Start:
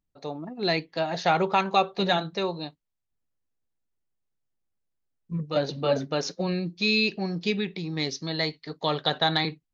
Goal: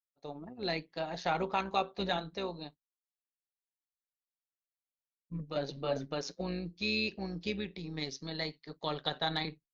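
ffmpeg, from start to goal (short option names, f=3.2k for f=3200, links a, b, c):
-af "agate=range=-33dB:threshold=-41dB:ratio=3:detection=peak,tremolo=f=130:d=0.519,volume=-7dB"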